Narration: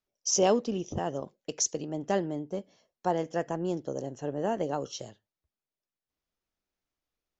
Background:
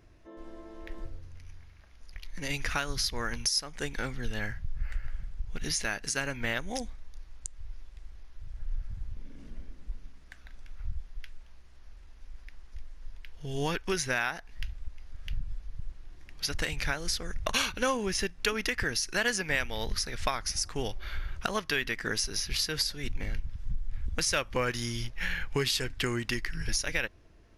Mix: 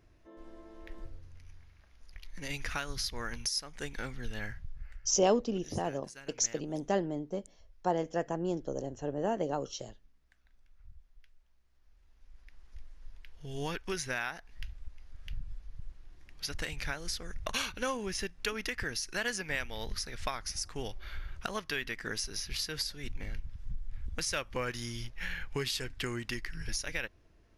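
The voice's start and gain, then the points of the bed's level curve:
4.80 s, −2.0 dB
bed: 0:04.52 −5 dB
0:05.18 −18.5 dB
0:11.59 −18.5 dB
0:12.70 −5.5 dB

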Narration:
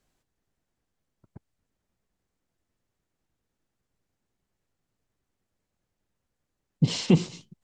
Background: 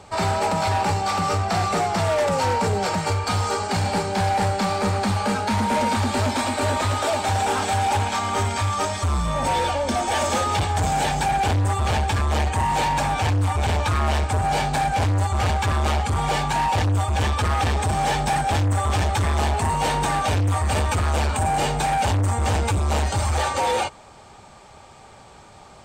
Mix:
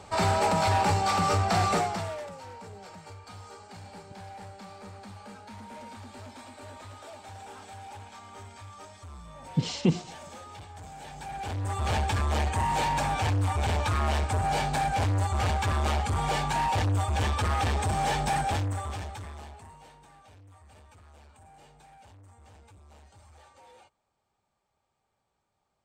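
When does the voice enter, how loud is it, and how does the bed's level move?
2.75 s, −4.0 dB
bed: 0:01.74 −2.5 dB
0:02.38 −23 dB
0:10.99 −23 dB
0:11.92 −5.5 dB
0:18.45 −5.5 dB
0:20.00 −33 dB

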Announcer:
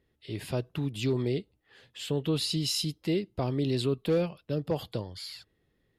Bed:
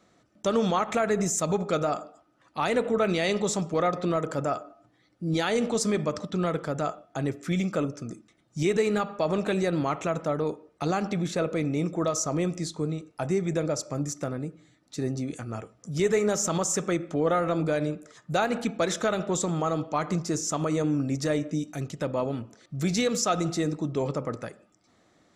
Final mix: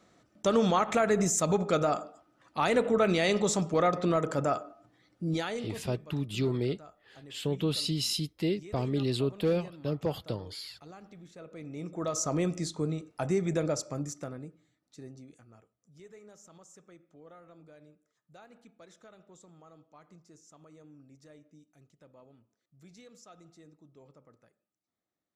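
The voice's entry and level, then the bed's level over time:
5.35 s, −1.0 dB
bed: 0:05.21 −0.5 dB
0:05.99 −22.5 dB
0:11.33 −22.5 dB
0:12.25 −2 dB
0:13.72 −2 dB
0:16.08 −28.5 dB

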